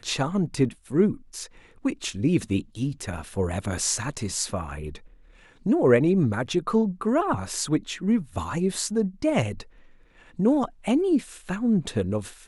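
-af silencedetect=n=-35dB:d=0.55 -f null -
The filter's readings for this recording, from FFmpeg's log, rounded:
silence_start: 4.97
silence_end: 5.66 | silence_duration: 0.69
silence_start: 9.62
silence_end: 10.39 | silence_duration: 0.77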